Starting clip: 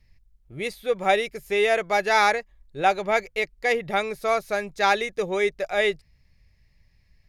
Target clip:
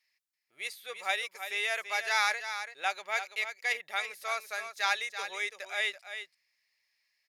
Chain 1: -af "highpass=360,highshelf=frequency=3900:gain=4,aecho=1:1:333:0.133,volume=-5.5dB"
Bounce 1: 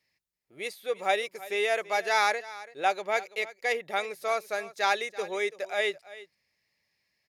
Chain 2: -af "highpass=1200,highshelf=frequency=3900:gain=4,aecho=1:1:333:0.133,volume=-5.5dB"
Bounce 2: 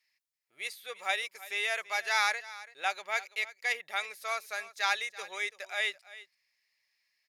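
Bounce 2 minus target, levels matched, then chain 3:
echo-to-direct −8 dB
-af "highpass=1200,highshelf=frequency=3900:gain=4,aecho=1:1:333:0.335,volume=-5.5dB"

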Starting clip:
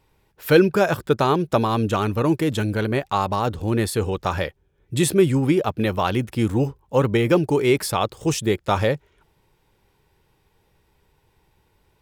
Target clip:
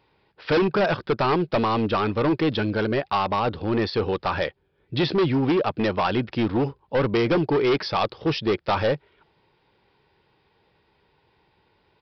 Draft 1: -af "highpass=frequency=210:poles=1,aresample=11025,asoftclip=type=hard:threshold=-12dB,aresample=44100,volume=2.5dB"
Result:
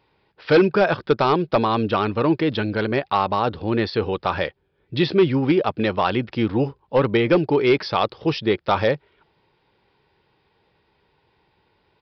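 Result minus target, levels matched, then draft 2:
hard clipping: distortion −9 dB
-af "highpass=frequency=210:poles=1,aresample=11025,asoftclip=type=hard:threshold=-19.5dB,aresample=44100,volume=2.5dB"

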